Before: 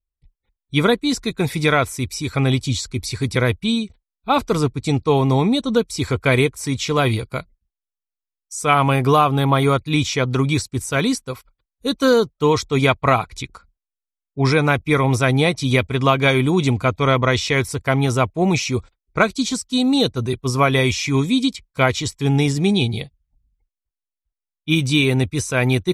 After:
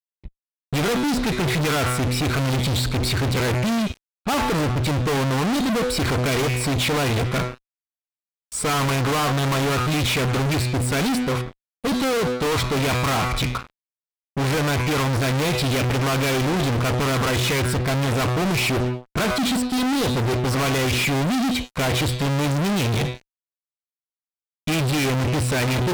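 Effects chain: running mean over 7 samples; de-hum 124.4 Hz, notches 38; fuzz box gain 42 dB, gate -50 dBFS; gain -7 dB

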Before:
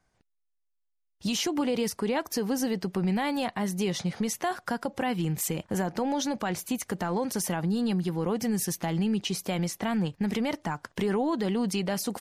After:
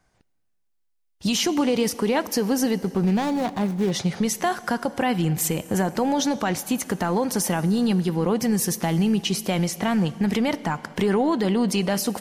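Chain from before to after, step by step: 2.76–3.92 median filter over 25 samples; on a send: reverb RT60 2.5 s, pre-delay 19 ms, DRR 16 dB; on the sum: gain +6 dB

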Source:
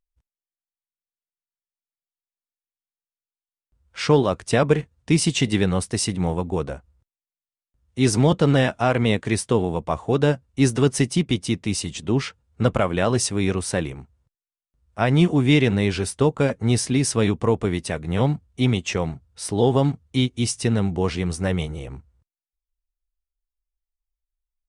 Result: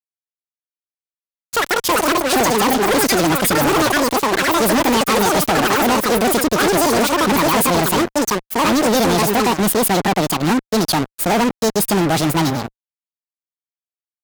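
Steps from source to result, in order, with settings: echoes that change speed 0.209 s, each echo +5 st, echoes 2; fuzz box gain 32 dB, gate -34 dBFS; speed mistake 45 rpm record played at 78 rpm

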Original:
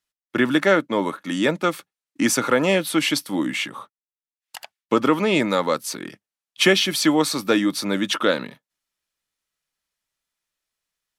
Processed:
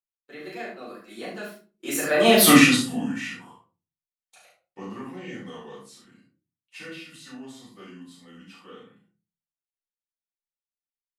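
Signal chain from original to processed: Doppler pass-by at 2.44, 57 m/s, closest 3.7 m; high shelf 5600 Hz +4.5 dB; early reflections 35 ms -4.5 dB, 68 ms -6.5 dB; shoebox room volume 150 m³, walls furnished, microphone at 4.4 m; gain +1 dB

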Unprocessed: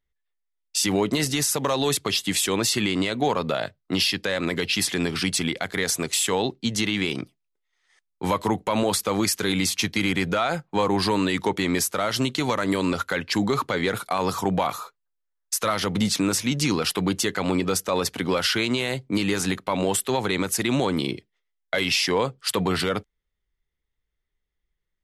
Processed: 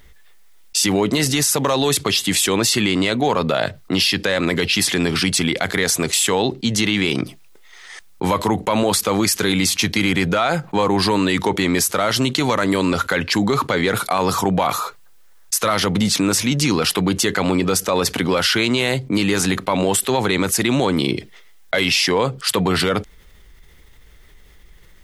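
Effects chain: fast leveller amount 50%; gain +3.5 dB

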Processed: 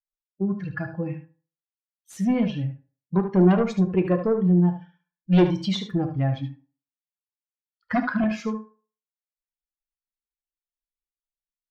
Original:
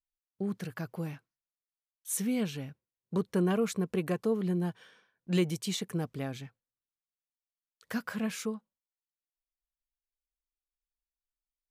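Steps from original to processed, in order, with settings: per-bin expansion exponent 2; 3.58–4.68 dynamic EQ 1400 Hz, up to -6 dB, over -52 dBFS, Q 0.83; in parallel at -2 dB: compressor, threshold -38 dBFS, peak gain reduction 13 dB; 6.35–8.24 on the sum: small resonant body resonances 270/900 Hz, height 16 dB, ringing for 60 ms; sine folder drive 8 dB, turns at -15.5 dBFS; air absorption 240 m; echo 74 ms -10 dB; on a send at -6.5 dB: reverb RT60 0.40 s, pre-delay 3 ms

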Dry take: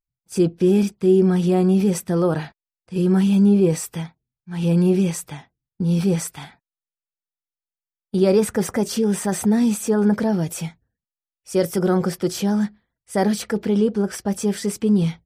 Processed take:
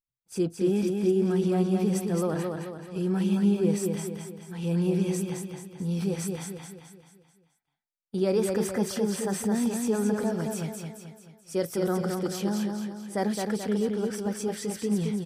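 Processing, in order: low shelf 180 Hz -3.5 dB; on a send: feedback echo 0.217 s, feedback 47%, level -4 dB; on the sum: gain -8 dB

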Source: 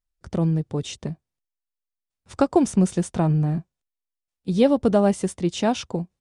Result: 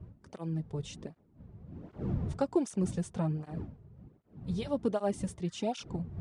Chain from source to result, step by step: wind noise 140 Hz -29 dBFS; spectral repair 5.47–5.78, 960–2000 Hz both; tape flanging out of phase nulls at 1.3 Hz, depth 4.1 ms; gain -9 dB

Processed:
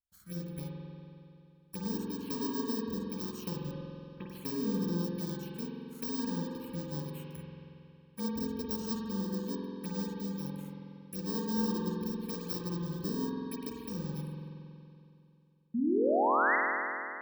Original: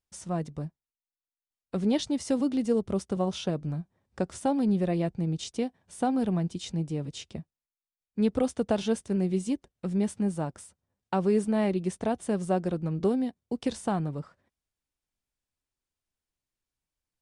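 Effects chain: FFT order left unsorted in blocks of 64 samples; rotary speaker horn 1.1 Hz; envelope phaser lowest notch 390 Hz, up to 2300 Hz, full sweep at -29.5 dBFS; 3.71–4.28 elliptic low-pass 3300 Hz, stop band 40 dB; 15.74–16.56 painted sound rise 220–2100 Hz -23 dBFS; spring tank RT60 2.7 s, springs 46 ms, chirp 45 ms, DRR -2 dB; gain -7.5 dB

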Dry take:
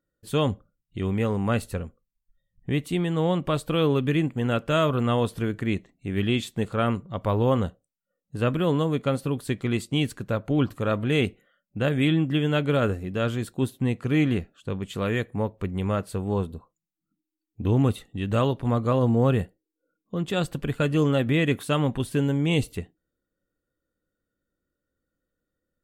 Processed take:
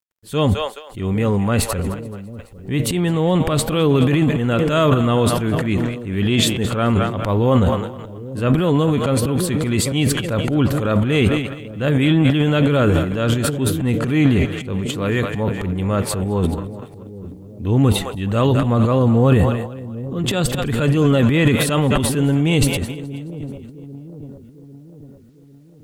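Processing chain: split-band echo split 500 Hz, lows 0.799 s, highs 0.213 s, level -15 dB; transient shaper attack -6 dB, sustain +12 dB; bit-crush 12-bit; gain +6.5 dB

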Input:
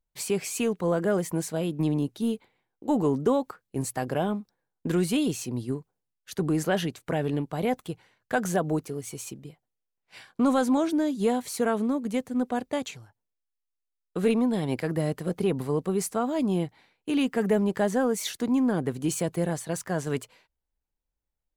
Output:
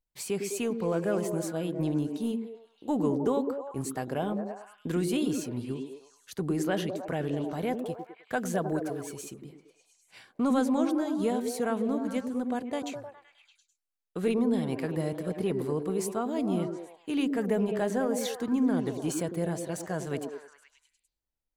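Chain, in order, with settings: 7.47–9.13 sample gate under -52.5 dBFS; delay with a stepping band-pass 0.103 s, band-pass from 290 Hz, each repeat 0.7 oct, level -2 dB; gain -4.5 dB

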